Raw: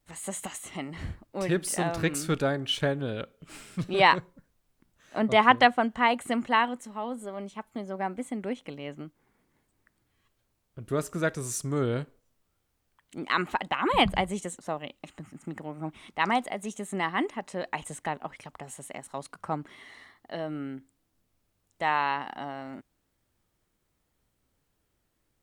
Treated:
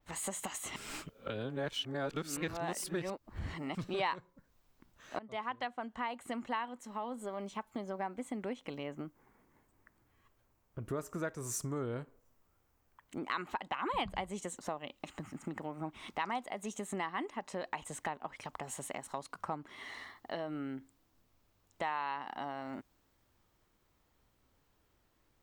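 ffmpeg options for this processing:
-filter_complex "[0:a]asettb=1/sr,asplit=3[a][b][c];[a]atrim=end=8.834[d];[b]atrim=start=8.83:end=13.32,asetpts=PTS-STARTPTS,afade=t=in:d=0.004:c=qsin,afade=t=out:st=4.486:d=0.004:c=qsin,equalizer=f=3.8k:t=o:w=1.2:g=-7.5[e];[c]atrim=start=13.316[f];[d][e]acrossfade=d=0.004:c1=hsin:c2=qsin[g];[g][f]acrossfade=d=0.004:c1=qsin:c2=hsin,asplit=4[h][i][j][k];[h]atrim=end=0.762[l];[i]atrim=start=0.758:end=3.752,asetpts=PTS-STARTPTS,areverse[m];[j]atrim=start=3.748:end=5.19,asetpts=PTS-STARTPTS,afade=t=out:st=1.438:d=0.004:c=hsin:silence=0.0794328[n];[k]atrim=start=5.19,asetpts=PTS-STARTPTS,afade=t=in:d=2.3:silence=0.0794328[o];[l][m]acrossfade=d=0.004:c1=hsin:c2=hsin[p];[n][o]concat=n=2:v=0:a=1[q];[p][q]acrossfade=d=0.004:c1=hsin:c2=hsin,equalizer=f=160:t=o:w=0.67:g=-3,equalizer=f=1k:t=o:w=0.67:g=4,equalizer=f=10k:t=o:w=0.67:g=-8,acompressor=threshold=-41dB:ratio=3,adynamicequalizer=threshold=0.00126:dfrequency=4500:dqfactor=0.7:tfrequency=4500:tqfactor=0.7:attack=5:release=100:ratio=0.375:range=2:mode=boostabove:tftype=highshelf,volume=2.5dB"

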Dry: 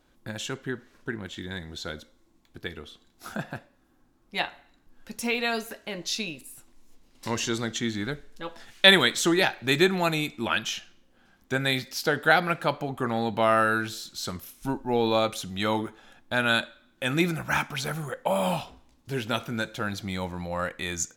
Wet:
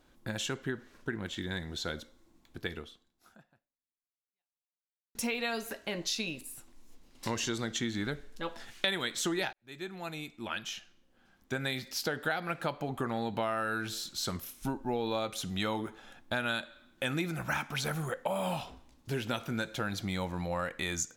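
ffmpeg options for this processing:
-filter_complex "[0:a]asplit=3[a][b][c];[a]atrim=end=5.15,asetpts=PTS-STARTPTS,afade=t=out:st=2.76:d=2.39:c=exp[d];[b]atrim=start=5.15:end=9.53,asetpts=PTS-STARTPTS,afade=t=in:d=0.004:c=hsin,afade=t=out:st=4.376:d=0.004:c=hsin[e];[c]atrim=start=9.53,asetpts=PTS-STARTPTS,afade=t=in:d=3.09[f];[d][e][f]concat=n=3:v=0:a=1,acompressor=threshold=-30dB:ratio=5"

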